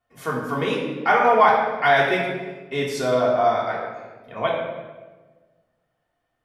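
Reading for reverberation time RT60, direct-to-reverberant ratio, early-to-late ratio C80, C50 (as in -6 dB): 1.3 s, -5.5 dB, 4.0 dB, 2.0 dB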